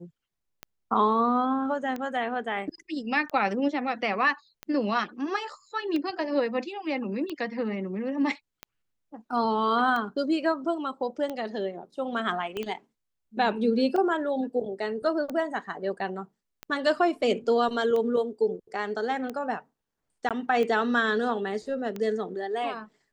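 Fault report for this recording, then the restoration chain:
scratch tick 45 rpm −20 dBFS
0:12.57: click −20 dBFS
0:20.29–0:20.31: drop-out 17 ms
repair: click removal
repair the gap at 0:20.29, 17 ms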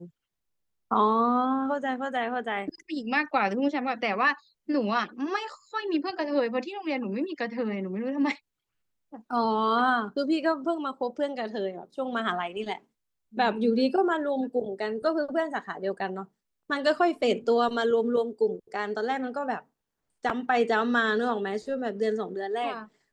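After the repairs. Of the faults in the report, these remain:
0:12.57: click

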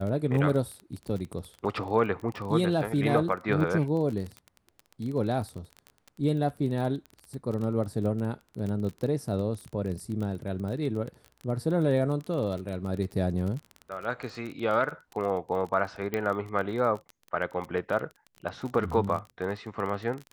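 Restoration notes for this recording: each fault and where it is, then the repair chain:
surface crackle 26 per second −33 dBFS
0:16.14: click −16 dBFS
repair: click removal

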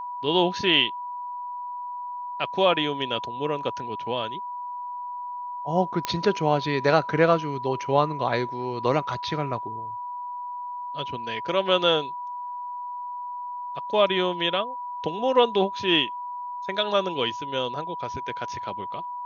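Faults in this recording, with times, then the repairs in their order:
whistle 980 Hz −31 dBFS
0:06.05: click −10 dBFS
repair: click removal
notch filter 980 Hz, Q 30

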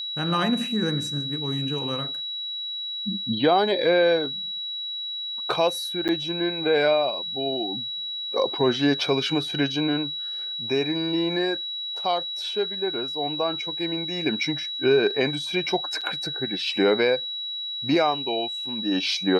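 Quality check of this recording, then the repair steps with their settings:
whistle 3,900 Hz −29 dBFS
0:06.08–0:06.09: drop-out 8.6 ms
0:16.01–0:16.02: drop-out 6 ms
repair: notch filter 3,900 Hz, Q 30
repair the gap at 0:06.08, 8.6 ms
repair the gap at 0:16.01, 6 ms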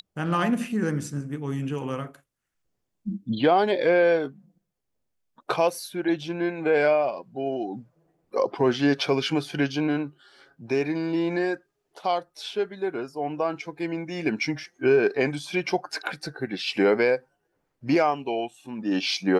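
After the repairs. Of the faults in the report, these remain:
none of them is left

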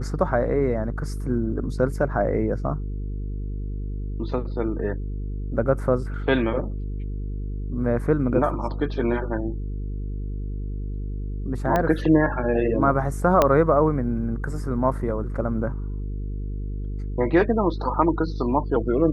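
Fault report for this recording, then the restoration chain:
mains buzz 50 Hz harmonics 9 −29 dBFS
0:11.76: click −10 dBFS
0:13.42: click −4 dBFS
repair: click removal
hum removal 50 Hz, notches 9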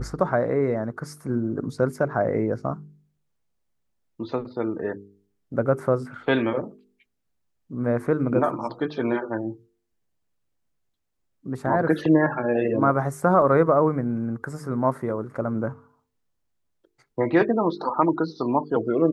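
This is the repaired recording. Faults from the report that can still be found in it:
0:13.42: click

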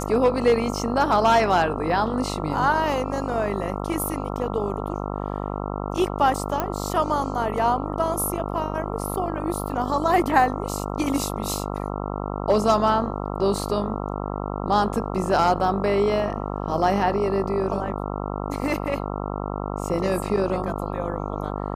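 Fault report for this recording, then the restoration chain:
mains buzz 50 Hz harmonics 27 −29 dBFS
0:06.60: click −10 dBFS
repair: click removal
hum removal 50 Hz, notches 27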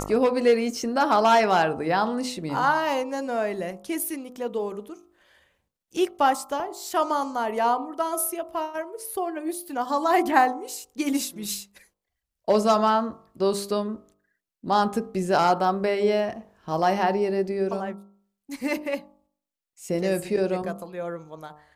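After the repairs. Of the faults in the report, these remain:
none of them is left

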